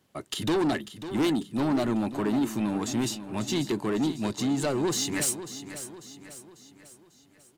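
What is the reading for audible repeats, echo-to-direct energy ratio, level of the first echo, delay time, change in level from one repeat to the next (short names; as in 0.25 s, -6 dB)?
4, -11.0 dB, -12.0 dB, 0.545 s, -6.5 dB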